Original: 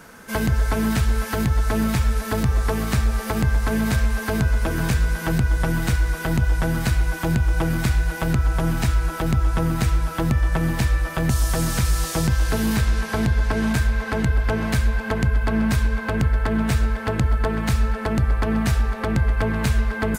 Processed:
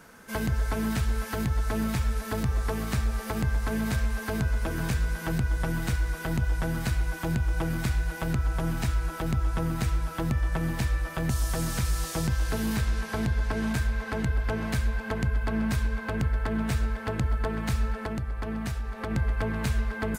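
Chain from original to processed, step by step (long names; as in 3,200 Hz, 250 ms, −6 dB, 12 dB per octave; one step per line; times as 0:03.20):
0:17.94–0:19.11: downward compressor, threshold −21 dBFS, peak gain reduction 6.5 dB
level −7 dB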